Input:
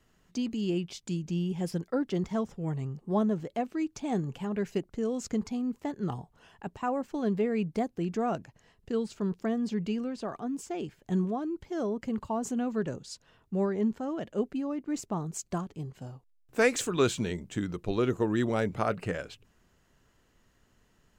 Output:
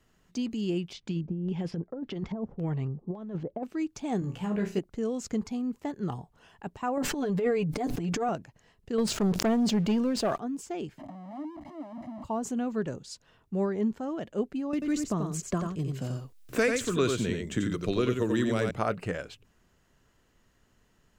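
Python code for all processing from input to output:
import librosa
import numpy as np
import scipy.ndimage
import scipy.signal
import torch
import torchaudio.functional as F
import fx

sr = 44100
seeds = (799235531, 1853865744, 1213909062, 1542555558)

y = fx.chain(x, sr, fx.over_compress(threshold_db=-31.0, ratio=-0.5),
    fx.filter_lfo_lowpass(shape='square', hz=1.8, low_hz=710.0, high_hz=3500.0, q=0.88), at=(0.93, 3.63))
y = fx.chain(y, sr, fx.doubler(ms=16.0, db=-4.5),
    fx.room_flutter(wall_m=5.8, rt60_s=0.29), at=(4.2, 4.79))
y = fx.chain(y, sr, fx.comb(ms=6.8, depth=0.67),
    fx.transient(attack_db=-11, sustain_db=9),
    fx.sustainer(db_per_s=31.0), at=(6.97, 8.29))
y = fx.chain(y, sr, fx.peak_eq(hz=640.0, db=4.5, octaves=0.33),
    fx.leveller(passes=2),
    fx.sustainer(db_per_s=74.0), at=(8.98, 10.38))
y = fx.chain(y, sr, fx.clip_1bit(),
    fx.double_bandpass(hz=420.0, octaves=1.1),
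    fx.comb(ms=1.0, depth=0.75), at=(10.98, 12.24))
y = fx.chain(y, sr, fx.peak_eq(hz=830.0, db=-11.5, octaves=0.32),
    fx.echo_single(ms=88, db=-5.0),
    fx.band_squash(depth_pct=70), at=(14.73, 18.71))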